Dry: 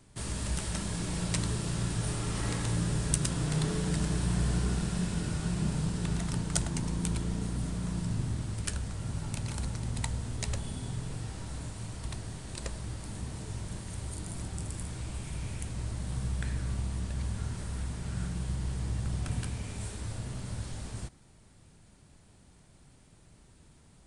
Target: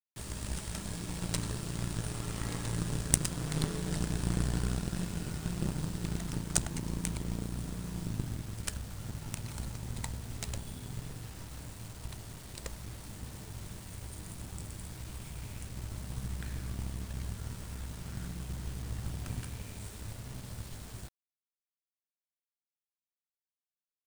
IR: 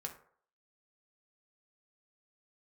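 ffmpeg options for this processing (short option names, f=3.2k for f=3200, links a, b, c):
-af "aeval=exprs='0.473*(cos(1*acos(clip(val(0)/0.473,-1,1)))-cos(1*PI/2))+0.0335*(cos(6*acos(clip(val(0)/0.473,-1,1)))-cos(6*PI/2))+0.0473*(cos(7*acos(clip(val(0)/0.473,-1,1)))-cos(7*PI/2))':c=same,acrusher=bits=8:mix=0:aa=0.000001,volume=4dB"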